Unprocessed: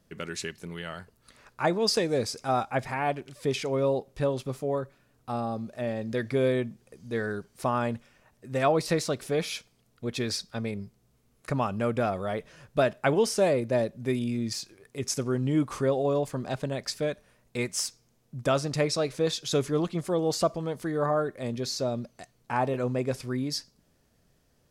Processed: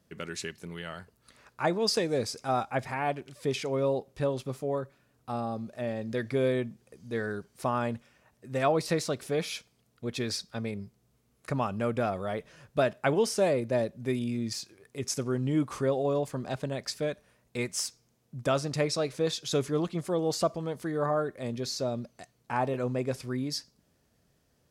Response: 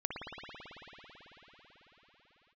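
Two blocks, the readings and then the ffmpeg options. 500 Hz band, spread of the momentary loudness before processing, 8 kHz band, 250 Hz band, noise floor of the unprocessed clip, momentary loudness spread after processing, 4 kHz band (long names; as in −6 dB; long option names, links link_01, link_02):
−2.0 dB, 11 LU, −2.0 dB, −2.0 dB, −68 dBFS, 11 LU, −2.0 dB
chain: -af "highpass=45,volume=-2dB"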